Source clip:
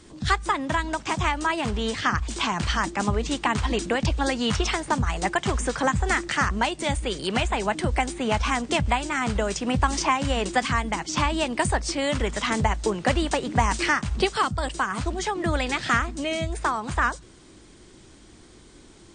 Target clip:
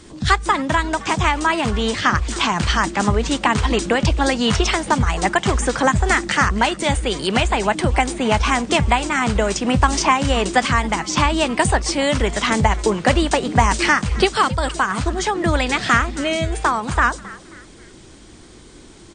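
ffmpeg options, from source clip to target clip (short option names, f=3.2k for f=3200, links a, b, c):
-filter_complex "[0:a]asplit=4[a][b][c][d];[b]adelay=268,afreqshift=140,volume=-19.5dB[e];[c]adelay=536,afreqshift=280,volume=-27.7dB[f];[d]adelay=804,afreqshift=420,volume=-35.9dB[g];[a][e][f][g]amix=inputs=4:normalize=0,volume=6.5dB"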